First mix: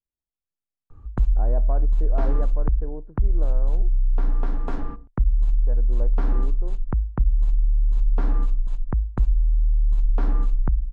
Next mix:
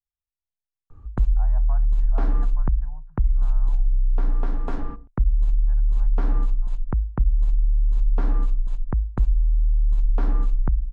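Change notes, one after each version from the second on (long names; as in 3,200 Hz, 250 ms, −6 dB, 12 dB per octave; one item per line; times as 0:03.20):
speech: add inverse Chebyshev band-stop filter 210–530 Hz, stop band 40 dB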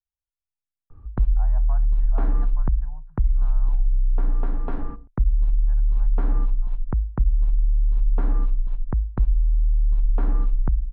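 background: add high-frequency loss of the air 310 metres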